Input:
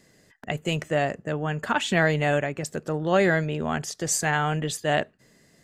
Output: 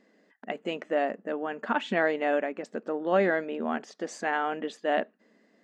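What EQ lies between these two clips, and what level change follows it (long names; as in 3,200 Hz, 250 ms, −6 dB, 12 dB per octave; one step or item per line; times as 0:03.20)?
linear-phase brick-wall high-pass 190 Hz
head-to-tape spacing loss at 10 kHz 29 dB
parametric band 370 Hz −3.5 dB 0.27 octaves
0.0 dB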